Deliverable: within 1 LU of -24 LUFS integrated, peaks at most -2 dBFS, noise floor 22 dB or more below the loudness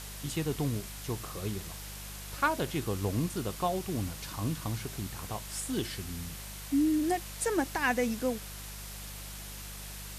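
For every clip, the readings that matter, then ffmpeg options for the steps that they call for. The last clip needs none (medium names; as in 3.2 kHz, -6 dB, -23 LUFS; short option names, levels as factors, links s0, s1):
hum 50 Hz; highest harmonic 200 Hz; hum level -43 dBFS; noise floor -43 dBFS; noise floor target -56 dBFS; loudness -33.5 LUFS; peak level -14.0 dBFS; loudness target -24.0 LUFS
-> -af "bandreject=f=50:t=h:w=4,bandreject=f=100:t=h:w=4,bandreject=f=150:t=h:w=4,bandreject=f=200:t=h:w=4"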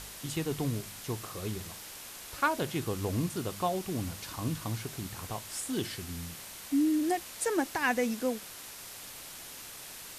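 hum not found; noise floor -46 dBFS; noise floor target -56 dBFS
-> -af "afftdn=nr=10:nf=-46"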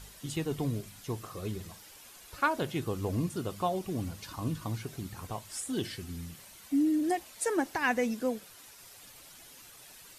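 noise floor -53 dBFS; noise floor target -56 dBFS
-> -af "afftdn=nr=6:nf=-53"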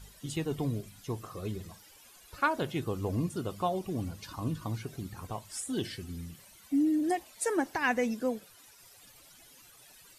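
noise floor -57 dBFS; loudness -33.5 LUFS; peak level -14.0 dBFS; loudness target -24.0 LUFS
-> -af "volume=2.99"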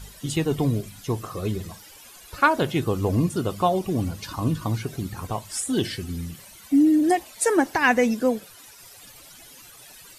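loudness -24.0 LUFS; peak level -4.5 dBFS; noise floor -47 dBFS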